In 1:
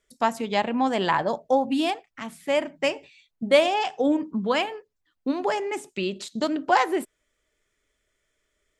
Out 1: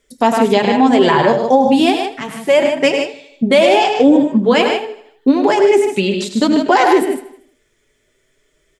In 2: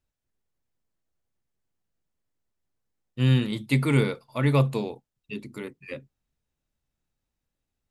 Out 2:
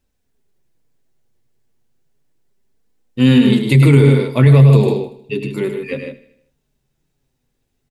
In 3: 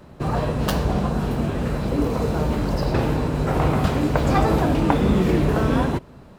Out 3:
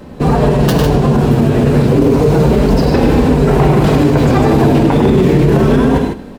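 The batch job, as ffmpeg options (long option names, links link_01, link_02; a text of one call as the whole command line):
ffmpeg -i in.wav -filter_complex "[0:a]equalizer=frequency=140:width=5.3:gain=7.5,asplit=2[link_01][link_02];[link_02]aecho=0:1:102|151.6:0.398|0.398[link_03];[link_01][link_03]amix=inputs=2:normalize=0,flanger=delay=3.8:depth=5:regen=-33:speed=0.32:shape=sinusoidal,equalizer=frequency=250:width_type=o:width=0.33:gain=4,equalizer=frequency=400:width_type=o:width=0.33:gain=8,equalizer=frequency=1250:width_type=o:width=0.33:gain=-4,asplit=2[link_04][link_05];[link_05]aecho=0:1:78|156|234|312|390:0.133|0.0733|0.0403|0.0222|0.0122[link_06];[link_04][link_06]amix=inputs=2:normalize=0,alimiter=level_in=15dB:limit=-1dB:release=50:level=0:latency=1,volume=-1dB" out.wav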